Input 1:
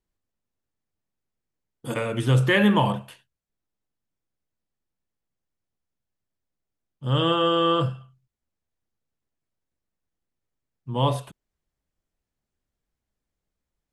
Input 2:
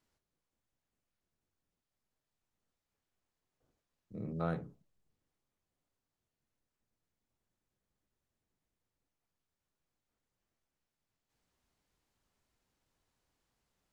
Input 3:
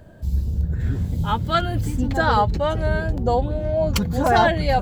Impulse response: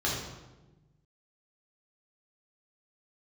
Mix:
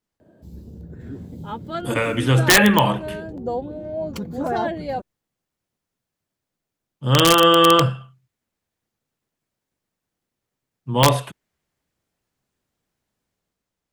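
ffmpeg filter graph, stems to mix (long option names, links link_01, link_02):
-filter_complex "[0:a]highpass=100,adynamicequalizer=threshold=0.00891:dfrequency=2000:dqfactor=1.2:tfrequency=2000:tqfactor=1.2:attack=5:release=100:ratio=0.375:range=3.5:mode=boostabove:tftype=bell,dynaudnorm=framelen=110:gausssize=11:maxgain=7dB,volume=0.5dB[link_01];[1:a]volume=-4.5dB[link_02];[2:a]highpass=frequency=180:poles=1,equalizer=frequency=320:width=0.57:gain=12.5,adelay=200,volume=-13dB[link_03];[link_01][link_02][link_03]amix=inputs=3:normalize=0,aeval=exprs='(mod(1.68*val(0)+1,2)-1)/1.68':channel_layout=same"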